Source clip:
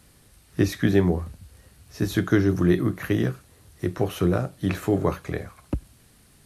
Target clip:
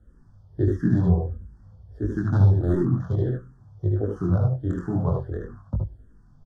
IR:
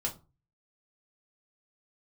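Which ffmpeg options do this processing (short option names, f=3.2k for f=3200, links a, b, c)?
-filter_complex "[0:a]acrossover=split=2900[a][b];[a]aexciter=amount=1.4:drive=9.7:freq=2.1k[c];[c][b]amix=inputs=2:normalize=0,highshelf=f=6.9k:g=8.5,flanger=delay=19:depth=4.4:speed=0.51,aemphasis=mode=reproduction:type=bsi,adynamicsmooth=sensitivity=2:basefreq=3.3k,asettb=1/sr,asplit=3[d][e][f];[d]atrim=end=2.224[g];[e]atrim=start=2.22:end=3.26,asetpts=PTS-STARTPTS,afade=t=in:d=0.004:c=qsin,afade=t=out:st=1.036:d=0.004:c=qsin,volume=11.5dB,asoftclip=hard,volume=-11.5dB[h];[f]atrim=start=3.256[i];[g][h]acrossfade=d=0.004:c1=hsin:c2=qsin[j];[j][i]acrossfade=d=0.004:c1=qsin:c2=hsin,asuperstop=centerf=2400:order=8:qfactor=1.3,aecho=1:1:70|78:0.422|0.668,asplit=2[k][l];[1:a]atrim=start_sample=2205[m];[l][m]afir=irnorm=-1:irlink=0,volume=-19dB[n];[k][n]amix=inputs=2:normalize=0,asplit=2[o][p];[p]afreqshift=-1.5[q];[o][q]amix=inputs=2:normalize=1,volume=-2.5dB"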